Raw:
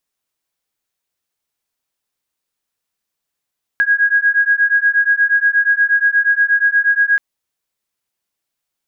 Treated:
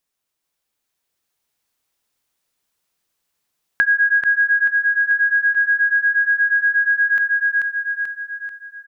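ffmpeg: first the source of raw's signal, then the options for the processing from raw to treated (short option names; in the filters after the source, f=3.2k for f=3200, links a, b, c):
-f lavfi -i "aevalsrc='0.2*(sin(2*PI*1640*t)+sin(2*PI*1648.4*t))':d=3.38:s=44100"
-filter_complex "[0:a]dynaudnorm=f=200:g=11:m=3.5dB,asplit=2[a][b];[b]aecho=0:1:437|874|1311|1748|2185|2622:0.631|0.309|0.151|0.0742|0.0364|0.0178[c];[a][c]amix=inputs=2:normalize=0,acompressor=threshold=-15dB:ratio=3"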